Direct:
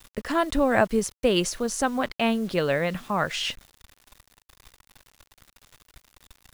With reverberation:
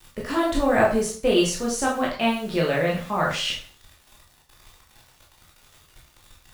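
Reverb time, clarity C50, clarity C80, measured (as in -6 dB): 0.40 s, 6.0 dB, 10.5 dB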